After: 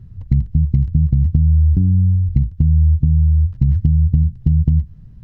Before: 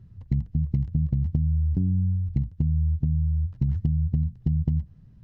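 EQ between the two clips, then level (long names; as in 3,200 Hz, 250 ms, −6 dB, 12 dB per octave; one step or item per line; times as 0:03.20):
dynamic equaliser 620 Hz, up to −5 dB, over −48 dBFS, Q 0.96
low-shelf EQ 80 Hz +10.5 dB
+6.0 dB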